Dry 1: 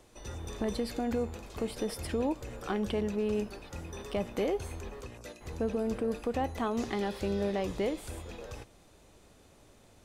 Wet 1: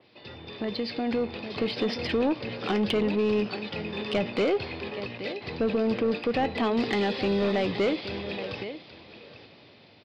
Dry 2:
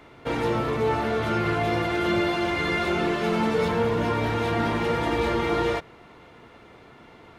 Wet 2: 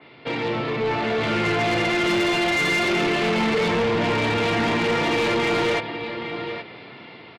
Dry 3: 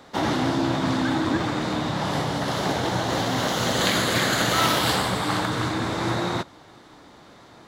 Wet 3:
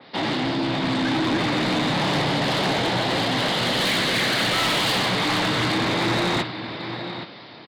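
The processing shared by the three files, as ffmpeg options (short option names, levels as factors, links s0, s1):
-af "highpass=f=110:w=0.5412,highpass=f=110:w=1.3066,aemphasis=mode=reproduction:type=75fm,aecho=1:1:822:0.2,dynaudnorm=f=110:g=21:m=2.37,aresample=11025,asoftclip=type=hard:threshold=0.282,aresample=44100,aexciter=amount=4.8:drive=2.4:freq=2000,asoftclip=type=tanh:threshold=0.126,adynamicequalizer=threshold=0.0158:dfrequency=3500:dqfactor=0.7:tfrequency=3500:tqfactor=0.7:attack=5:release=100:ratio=0.375:range=1.5:mode=cutabove:tftype=highshelf"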